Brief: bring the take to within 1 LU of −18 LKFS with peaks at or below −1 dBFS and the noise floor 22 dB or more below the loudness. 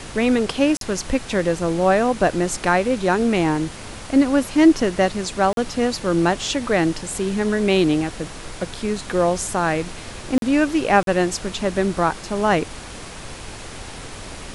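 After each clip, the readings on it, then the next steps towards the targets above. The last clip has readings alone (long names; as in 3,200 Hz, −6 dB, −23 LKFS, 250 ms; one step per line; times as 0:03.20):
number of dropouts 4; longest dropout 42 ms; background noise floor −36 dBFS; target noise floor −42 dBFS; integrated loudness −20.0 LKFS; sample peak −3.5 dBFS; target loudness −18.0 LKFS
→ repair the gap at 0:00.77/0:05.53/0:10.38/0:11.03, 42 ms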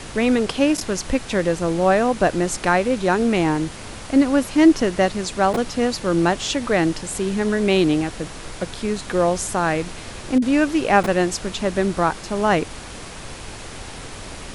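number of dropouts 0; background noise floor −36 dBFS; target noise floor −42 dBFS
→ noise reduction from a noise print 6 dB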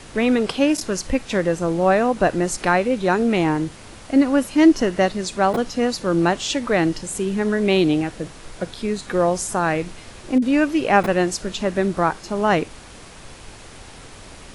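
background noise floor −41 dBFS; target noise floor −42 dBFS
→ noise reduction from a noise print 6 dB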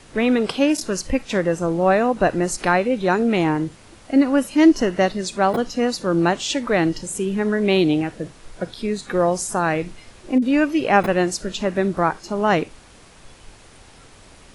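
background noise floor −47 dBFS; integrated loudness −20.0 LKFS; sample peak −3.5 dBFS; target loudness −18.0 LKFS
→ level +2 dB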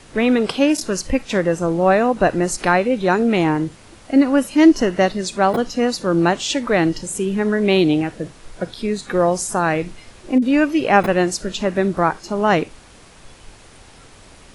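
integrated loudness −18.0 LKFS; sample peak −1.5 dBFS; background noise floor −45 dBFS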